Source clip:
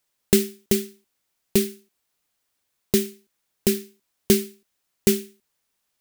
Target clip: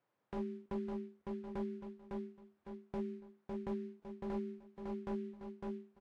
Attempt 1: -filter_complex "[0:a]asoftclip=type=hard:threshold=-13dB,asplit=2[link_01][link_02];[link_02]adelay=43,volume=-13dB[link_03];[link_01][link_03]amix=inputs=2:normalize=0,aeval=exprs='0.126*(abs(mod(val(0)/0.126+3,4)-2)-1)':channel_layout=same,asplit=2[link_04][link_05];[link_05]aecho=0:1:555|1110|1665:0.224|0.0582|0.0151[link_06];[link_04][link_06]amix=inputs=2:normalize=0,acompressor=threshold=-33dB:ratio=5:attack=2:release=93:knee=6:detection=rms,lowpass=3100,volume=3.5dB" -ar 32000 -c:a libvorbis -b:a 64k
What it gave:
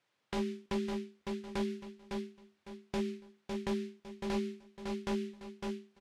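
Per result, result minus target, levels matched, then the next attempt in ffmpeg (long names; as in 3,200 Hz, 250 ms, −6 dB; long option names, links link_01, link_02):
4,000 Hz band +14.0 dB; downward compressor: peak gain reduction −5 dB
-filter_complex "[0:a]asoftclip=type=hard:threshold=-13dB,asplit=2[link_01][link_02];[link_02]adelay=43,volume=-13dB[link_03];[link_01][link_03]amix=inputs=2:normalize=0,aeval=exprs='0.126*(abs(mod(val(0)/0.126+3,4)-2)-1)':channel_layout=same,asplit=2[link_04][link_05];[link_05]aecho=0:1:555|1110|1665:0.224|0.0582|0.0151[link_06];[link_04][link_06]amix=inputs=2:normalize=0,acompressor=threshold=-33dB:ratio=5:attack=2:release=93:knee=6:detection=rms,lowpass=1200,volume=3.5dB" -ar 32000 -c:a libvorbis -b:a 64k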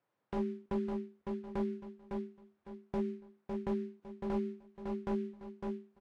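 downward compressor: peak gain reduction −5 dB
-filter_complex "[0:a]asoftclip=type=hard:threshold=-13dB,asplit=2[link_01][link_02];[link_02]adelay=43,volume=-13dB[link_03];[link_01][link_03]amix=inputs=2:normalize=0,aeval=exprs='0.126*(abs(mod(val(0)/0.126+3,4)-2)-1)':channel_layout=same,asplit=2[link_04][link_05];[link_05]aecho=0:1:555|1110|1665:0.224|0.0582|0.0151[link_06];[link_04][link_06]amix=inputs=2:normalize=0,acompressor=threshold=-39.5dB:ratio=5:attack=2:release=93:knee=6:detection=rms,lowpass=1200,volume=3.5dB" -ar 32000 -c:a libvorbis -b:a 64k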